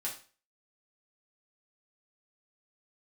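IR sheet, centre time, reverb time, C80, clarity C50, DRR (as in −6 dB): 21 ms, 0.40 s, 14.0 dB, 8.5 dB, −5.0 dB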